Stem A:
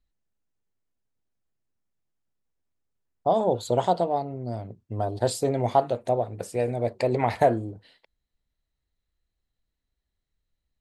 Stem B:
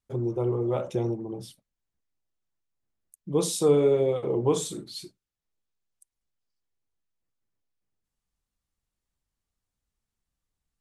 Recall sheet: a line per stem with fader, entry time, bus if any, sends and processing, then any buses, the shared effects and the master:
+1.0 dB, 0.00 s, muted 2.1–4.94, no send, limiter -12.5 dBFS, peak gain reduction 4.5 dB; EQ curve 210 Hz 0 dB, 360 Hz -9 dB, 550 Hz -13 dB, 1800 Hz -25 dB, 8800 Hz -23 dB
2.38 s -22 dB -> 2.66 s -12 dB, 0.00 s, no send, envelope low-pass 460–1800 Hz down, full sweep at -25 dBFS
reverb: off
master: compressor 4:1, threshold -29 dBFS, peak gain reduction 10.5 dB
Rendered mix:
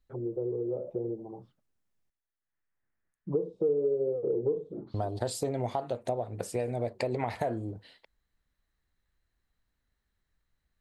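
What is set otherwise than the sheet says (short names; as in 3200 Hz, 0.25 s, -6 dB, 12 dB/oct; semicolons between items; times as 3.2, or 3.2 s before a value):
stem A: missing EQ curve 210 Hz 0 dB, 360 Hz -9 dB, 550 Hz -13 dB, 1800 Hz -25 dB, 8800 Hz -23 dB; stem B -22.0 dB -> -10.5 dB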